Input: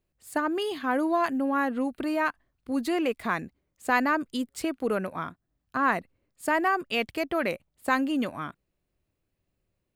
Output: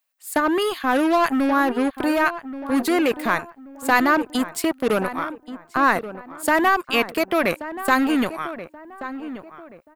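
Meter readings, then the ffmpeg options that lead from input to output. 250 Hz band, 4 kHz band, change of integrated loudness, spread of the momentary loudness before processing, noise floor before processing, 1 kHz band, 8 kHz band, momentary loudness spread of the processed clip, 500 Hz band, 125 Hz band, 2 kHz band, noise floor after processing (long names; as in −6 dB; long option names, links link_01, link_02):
+7.0 dB, +8.0 dB, +7.0 dB, 10 LU, −80 dBFS, +7.0 dB, +10.5 dB, 14 LU, +7.0 dB, +4.5 dB, +7.0 dB, −54 dBFS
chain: -filter_complex "[0:a]highshelf=frequency=10000:gain=10,acrossover=split=720|6100[link_01][link_02][link_03];[link_01]acrusher=bits=4:mix=0:aa=0.5[link_04];[link_04][link_02][link_03]amix=inputs=3:normalize=0,asplit=2[link_05][link_06];[link_06]adelay=1130,lowpass=frequency=1500:poles=1,volume=-12dB,asplit=2[link_07][link_08];[link_08]adelay=1130,lowpass=frequency=1500:poles=1,volume=0.35,asplit=2[link_09][link_10];[link_10]adelay=1130,lowpass=frequency=1500:poles=1,volume=0.35,asplit=2[link_11][link_12];[link_12]adelay=1130,lowpass=frequency=1500:poles=1,volume=0.35[link_13];[link_05][link_07][link_09][link_11][link_13]amix=inputs=5:normalize=0,volume=6.5dB"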